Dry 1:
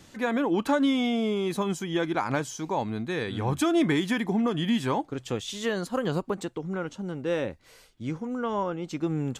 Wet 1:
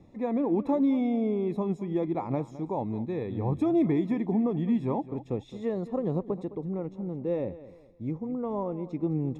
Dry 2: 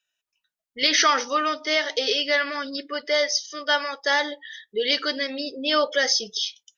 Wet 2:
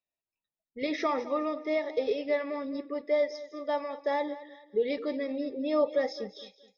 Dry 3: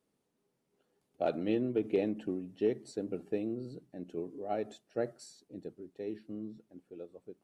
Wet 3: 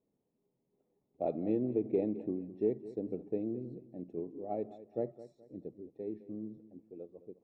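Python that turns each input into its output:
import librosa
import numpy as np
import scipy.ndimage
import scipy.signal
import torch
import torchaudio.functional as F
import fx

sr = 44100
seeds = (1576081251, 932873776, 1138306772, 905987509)

y = np.convolve(x, np.full(29, 1.0 / 29))[:len(x)]
y = fx.echo_feedback(y, sr, ms=212, feedback_pct=33, wet_db=-16)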